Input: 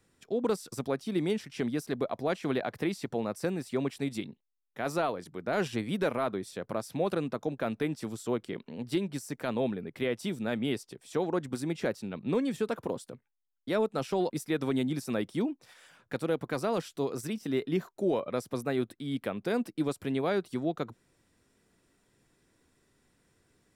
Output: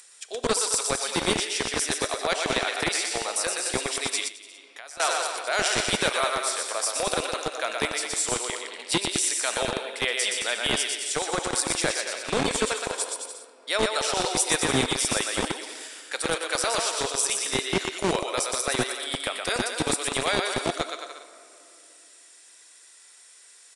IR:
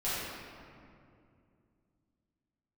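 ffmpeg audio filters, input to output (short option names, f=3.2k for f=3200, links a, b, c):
-filter_complex "[0:a]highpass=45,aecho=1:1:120|216|292.8|354.2|403.4:0.631|0.398|0.251|0.158|0.1,asplit=2[a][b];[1:a]atrim=start_sample=2205,lowshelf=f=450:g=-3[c];[b][c]afir=irnorm=-1:irlink=0,volume=-16dB[d];[a][d]amix=inputs=2:normalize=0,crystalizer=i=9.5:c=0,acrossover=split=450[e][f];[e]acrusher=bits=3:mix=0:aa=0.000001[g];[f]acompressor=mode=upward:threshold=-45dB:ratio=2.5[h];[g][h]amix=inputs=2:normalize=0,aresample=22050,aresample=44100,asettb=1/sr,asplit=3[i][j][k];[i]atrim=end=4.284[l];[j]atrim=start=4.28:end=5,asetpts=PTS-STARTPTS,afade=t=in:d=0.004:c=qsin,afade=t=out:st=0.716:d=0.004:c=qsin,acompressor=threshold=-40dB:ratio=10[m];[k]atrim=start=4.996[n];[l][m]acrossfade=d=0.004:c1=hsin:c2=qsin[o];[o][n]acrossfade=d=0.004:c1=qsin:c2=hsin"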